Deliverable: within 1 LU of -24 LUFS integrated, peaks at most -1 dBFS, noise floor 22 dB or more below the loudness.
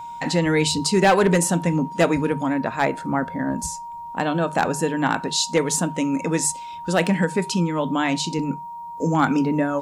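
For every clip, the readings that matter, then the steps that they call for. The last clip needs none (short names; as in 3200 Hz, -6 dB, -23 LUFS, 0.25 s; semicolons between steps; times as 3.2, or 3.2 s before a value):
clipped 0.3%; flat tops at -10.5 dBFS; steady tone 940 Hz; tone level -32 dBFS; loudness -21.5 LUFS; peak -10.5 dBFS; loudness target -24.0 LUFS
-> clip repair -10.5 dBFS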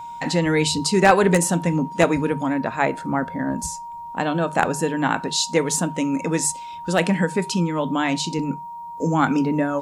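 clipped 0.0%; steady tone 940 Hz; tone level -32 dBFS
-> notch 940 Hz, Q 30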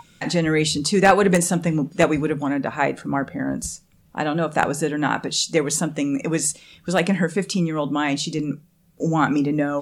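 steady tone none; loudness -21.5 LUFS; peak -1.0 dBFS; loudness target -24.0 LUFS
-> gain -2.5 dB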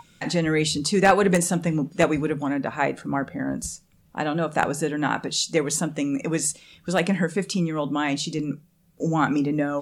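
loudness -24.0 LUFS; peak -3.5 dBFS; noise floor -59 dBFS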